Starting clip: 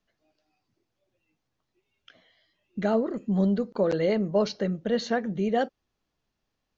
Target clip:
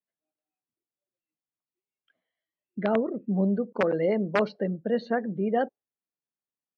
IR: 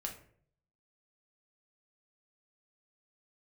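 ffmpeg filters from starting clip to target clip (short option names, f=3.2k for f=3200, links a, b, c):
-af "aeval=exprs='(mod(5.01*val(0)+1,2)-1)/5.01':c=same,afftdn=nr=20:nf=-38,highpass=150,lowpass=2.4k"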